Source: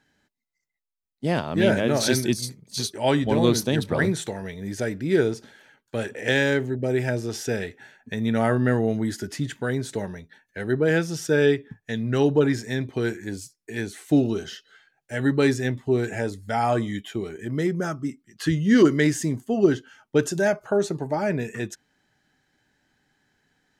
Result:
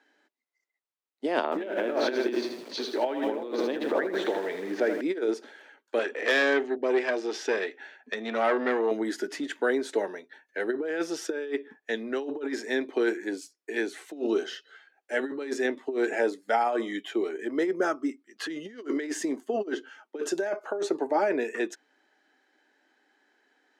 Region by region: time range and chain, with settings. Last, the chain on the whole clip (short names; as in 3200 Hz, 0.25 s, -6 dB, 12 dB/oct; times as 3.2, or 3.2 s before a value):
1.44–5.01 air absorption 250 m + upward compressor, threshold -23 dBFS + lo-fi delay 80 ms, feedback 55%, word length 7-bit, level -6.5 dB
5.99–8.91 LPF 4300 Hz + high shelf 2600 Hz +9 dB + tube stage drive 18 dB, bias 0.5
whole clip: LPF 2500 Hz 6 dB/oct; negative-ratio compressor -24 dBFS, ratio -0.5; steep high-pass 290 Hz 36 dB/oct; gain +1 dB